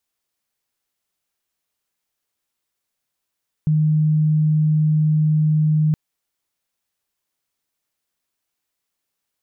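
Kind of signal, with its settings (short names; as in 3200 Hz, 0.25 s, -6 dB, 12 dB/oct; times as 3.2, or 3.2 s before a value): tone sine 154 Hz -13.5 dBFS 2.27 s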